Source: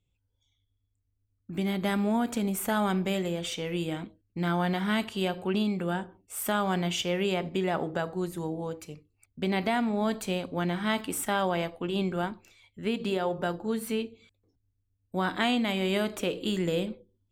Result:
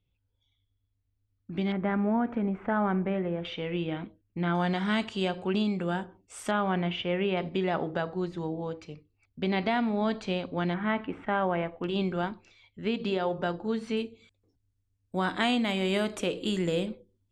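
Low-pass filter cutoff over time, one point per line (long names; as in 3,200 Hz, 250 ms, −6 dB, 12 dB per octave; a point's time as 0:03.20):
low-pass filter 24 dB per octave
4,500 Hz
from 0:01.72 2,000 Hz
from 0:03.45 3,300 Hz
from 0:04.55 7,300 Hz
from 0:06.51 3,000 Hz
from 0:07.37 5,000 Hz
from 0:10.74 2,400 Hz
from 0:11.84 5,700 Hz
from 0:13.97 10,000 Hz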